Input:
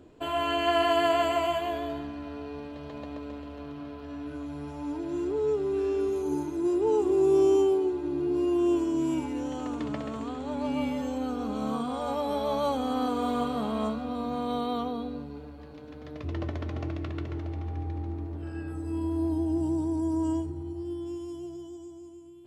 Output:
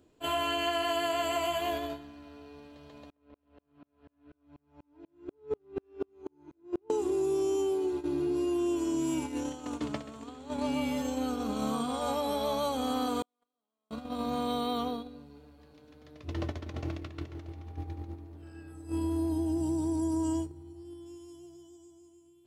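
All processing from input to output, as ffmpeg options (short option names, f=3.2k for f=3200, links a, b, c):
-filter_complex "[0:a]asettb=1/sr,asplit=3[a][b][c];[a]atrim=end=3.104[d];[b]atrim=start=3.1:end=6.9,asetpts=PTS-STARTPTS,afade=t=in:d=0.004:c=qsin,afade=t=out:st=3.796:d=0.004:c=qsin,lowpass=2.4k,aeval=exprs='val(0)*pow(10,-38*if(lt(mod(-4.1*n/s,1),2*abs(-4.1)/1000),1-mod(-4.1*n/s,1)/(2*abs(-4.1)/1000),(mod(-4.1*n/s,1)-2*abs(-4.1)/1000)/(1-2*abs(-4.1)/1000))/20)':c=same[e];[c]atrim=start=6.896[f];[d][e]acrossfade=d=0.004:c1=hsin:c2=qsin[g];[g][f]acrossfade=d=0.004:c1=qsin:c2=hsin,asettb=1/sr,asplit=3[h][i][j];[h]atrim=end=13.224[k];[i]atrim=start=13.22:end=13.91,asetpts=PTS-STARTPTS,afade=t=in:d=0.004:c=qsin,afade=t=out:st=0.686:d=0.004:c=qsin,highpass=280,agate=range=-46dB:threshold=-24dB:ratio=16:release=100:detection=peak[l];[j]atrim=start=13.906[m];[k][l]acrossfade=d=0.004:c1=hsin:c2=qsin[n];[n][m]acrossfade=d=0.004:c1=qsin:c2=hsin,highshelf=f=3.7k:g=11.5,agate=range=-13dB:threshold=-31dB:ratio=16:detection=peak,acompressor=threshold=-29dB:ratio=5,volume=1.5dB"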